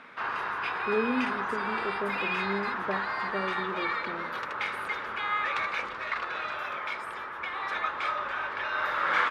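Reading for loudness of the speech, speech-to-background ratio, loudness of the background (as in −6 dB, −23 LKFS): −35.5 LKFS, −4.5 dB, −31.0 LKFS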